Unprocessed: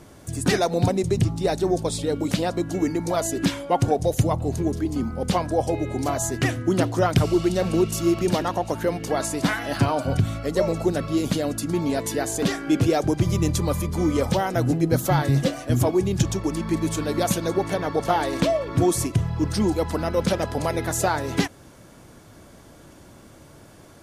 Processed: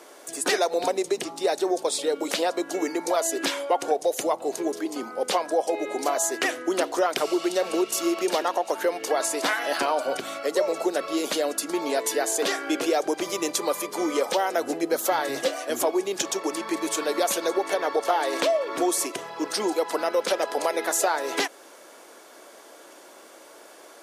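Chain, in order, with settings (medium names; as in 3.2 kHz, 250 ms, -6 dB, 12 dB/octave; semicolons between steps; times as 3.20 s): high-pass 390 Hz 24 dB/octave; compression 2.5:1, threshold -25 dBFS, peak gain reduction 7 dB; trim +4 dB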